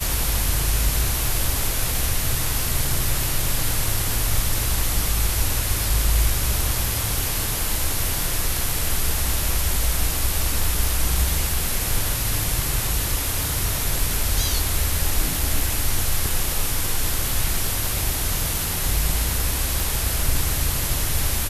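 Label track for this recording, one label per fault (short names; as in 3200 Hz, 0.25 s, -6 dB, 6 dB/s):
19.800000	19.800000	pop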